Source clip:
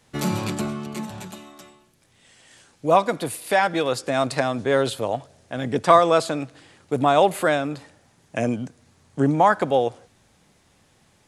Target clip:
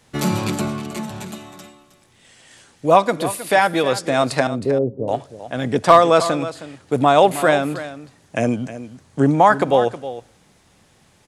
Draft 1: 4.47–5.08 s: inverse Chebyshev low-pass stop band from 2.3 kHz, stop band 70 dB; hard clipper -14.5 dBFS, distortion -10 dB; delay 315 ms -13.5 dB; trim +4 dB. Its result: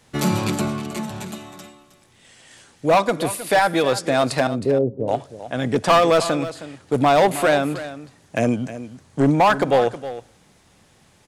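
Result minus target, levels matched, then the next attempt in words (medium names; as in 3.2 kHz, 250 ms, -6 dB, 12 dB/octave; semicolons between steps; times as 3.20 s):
hard clipper: distortion +18 dB
4.47–5.08 s: inverse Chebyshev low-pass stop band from 2.3 kHz, stop band 70 dB; hard clipper -5.5 dBFS, distortion -28 dB; delay 315 ms -13.5 dB; trim +4 dB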